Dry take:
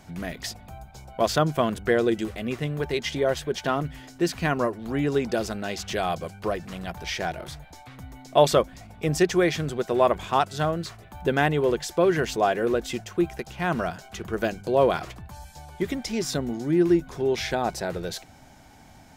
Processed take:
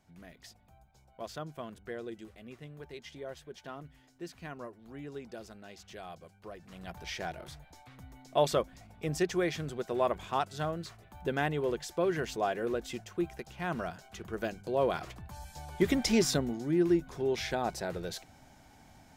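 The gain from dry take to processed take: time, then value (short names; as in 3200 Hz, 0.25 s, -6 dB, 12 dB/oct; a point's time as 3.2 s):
6.5 s -19 dB
6.92 s -9 dB
14.8 s -9 dB
16.13 s +3 dB
16.57 s -6.5 dB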